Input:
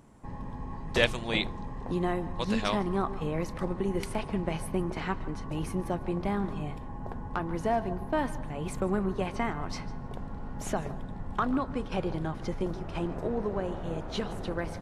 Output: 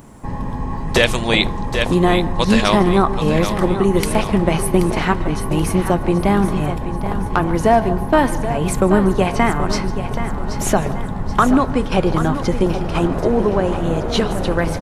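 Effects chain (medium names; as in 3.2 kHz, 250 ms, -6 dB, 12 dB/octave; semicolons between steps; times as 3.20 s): treble shelf 11 kHz +10.5 dB; feedback delay 780 ms, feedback 43%, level -10.5 dB; loudness maximiser +15.5 dB; trim -1 dB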